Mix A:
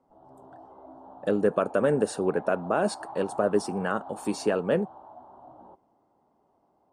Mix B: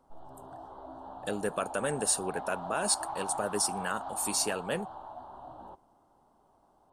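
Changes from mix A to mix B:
speech -10.5 dB; master: remove band-pass 340 Hz, Q 0.53

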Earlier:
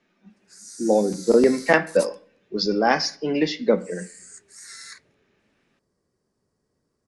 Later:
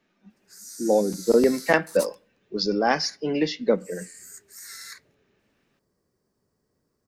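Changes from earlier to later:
speech: send -10.5 dB; master: remove steep low-pass 11000 Hz 96 dB/oct

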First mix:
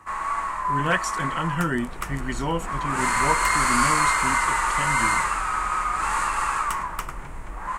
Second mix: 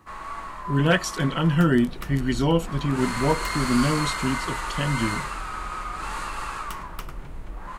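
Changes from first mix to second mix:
speech +7.5 dB; master: add ten-band EQ 1000 Hz -8 dB, 2000 Hz -7 dB, 4000 Hz +4 dB, 8000 Hz -11 dB

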